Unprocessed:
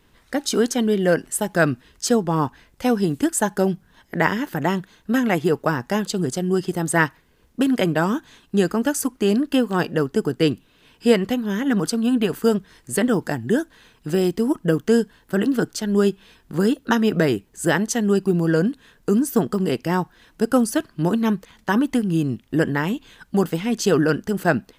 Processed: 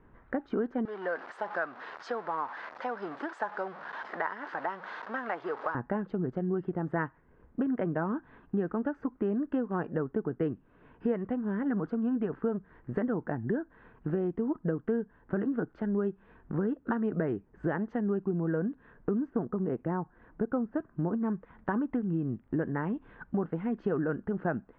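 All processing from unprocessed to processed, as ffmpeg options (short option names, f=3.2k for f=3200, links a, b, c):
-filter_complex "[0:a]asettb=1/sr,asplit=3[a][b][c];[a]atrim=end=0.854[d];[b]atrim=start=0.85:end=5.75,asetpts=PTS-STARTPTS,afade=t=in:d=0.004:c=qsin,afade=t=out:st=4.896:d=0.004:c=qsin,aeval=exprs='val(0)+0.5*0.0562*sgn(val(0))':c=same,highpass=910,highshelf=f=3.4k:t=q:w=1.5:g=11[e];[c]atrim=start=5.746[f];[d][e]acrossfade=d=0.004:c1=hsin:c2=qsin[g];[g][f]acrossfade=d=0.004:c1=qsin:c2=hsin,asettb=1/sr,asplit=3[h][i][j];[h]atrim=end=19.304[k];[i]atrim=start=19.3:end=21.3,asetpts=PTS-STARTPTS,afade=t=in:d=0.004:c=qsin,afade=t=out:st=1.996:d=0.004:c=qsin,acrossover=split=3200[l][m];[m]acompressor=threshold=-41dB:ratio=4:attack=1:release=60[n];[l][n]amix=inputs=2:normalize=0,highshelf=f=2.5k:g=-8[o];[j]atrim=start=21.296[p];[k][o]acrossfade=d=0.004:c1=hsin:c2=qsin[q];[q][p]acrossfade=d=0.004:c1=qsin:c2=hsin,lowpass=f=1.6k:w=0.5412,lowpass=f=1.6k:w=1.3066,acompressor=threshold=-31dB:ratio=3"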